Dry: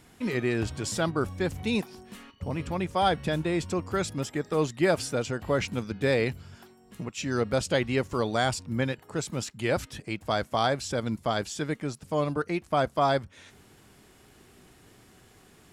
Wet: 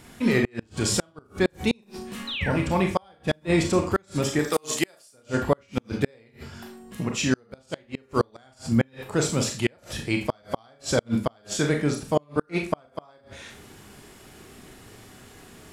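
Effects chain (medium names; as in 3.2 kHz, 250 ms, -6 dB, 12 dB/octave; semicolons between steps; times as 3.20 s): 2.27–2.51 s: painted sound fall 1.3–4.2 kHz -39 dBFS; 4.39–5.14 s: RIAA curve recording; Schroeder reverb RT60 0.35 s, combs from 27 ms, DRR 2.5 dB; inverted gate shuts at -16 dBFS, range -37 dB; trim +6.5 dB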